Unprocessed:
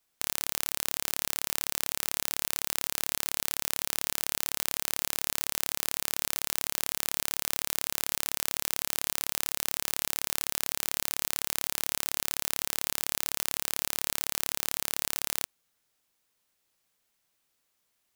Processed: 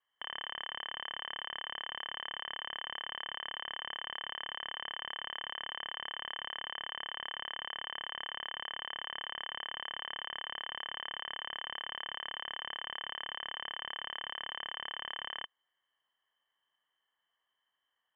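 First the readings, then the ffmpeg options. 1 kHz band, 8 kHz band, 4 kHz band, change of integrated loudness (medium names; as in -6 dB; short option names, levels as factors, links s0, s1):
-1.0 dB, under -40 dB, -2.0 dB, -9.5 dB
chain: -filter_complex "[0:a]asplit=3[s0][s1][s2];[s0]bandpass=f=530:t=q:w=8,volume=1[s3];[s1]bandpass=f=1840:t=q:w=8,volume=0.501[s4];[s2]bandpass=f=2480:t=q:w=8,volume=0.355[s5];[s3][s4][s5]amix=inputs=3:normalize=0,aemphasis=mode=reproduction:type=50fm,lowpass=f=3100:t=q:w=0.5098,lowpass=f=3100:t=q:w=0.6013,lowpass=f=3100:t=q:w=0.9,lowpass=f=3100:t=q:w=2.563,afreqshift=-3600,volume=3.76"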